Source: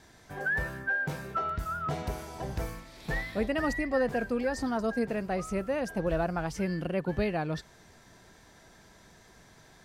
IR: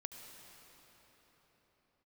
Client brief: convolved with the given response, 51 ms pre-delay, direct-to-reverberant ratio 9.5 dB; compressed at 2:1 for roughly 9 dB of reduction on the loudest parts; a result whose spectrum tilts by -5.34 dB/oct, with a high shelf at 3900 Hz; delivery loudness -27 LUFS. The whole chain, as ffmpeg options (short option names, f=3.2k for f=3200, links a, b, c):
-filter_complex "[0:a]highshelf=f=3.9k:g=-4,acompressor=threshold=-41dB:ratio=2,asplit=2[a][b];[1:a]atrim=start_sample=2205,adelay=51[c];[b][c]afir=irnorm=-1:irlink=0,volume=-6.5dB[d];[a][d]amix=inputs=2:normalize=0,volume=12dB"